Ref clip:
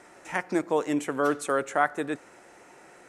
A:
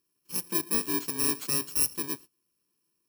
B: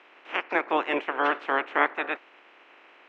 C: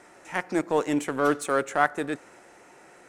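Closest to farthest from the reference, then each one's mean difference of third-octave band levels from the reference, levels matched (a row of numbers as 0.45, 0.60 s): C, B, A; 1.5, 8.5, 13.5 dB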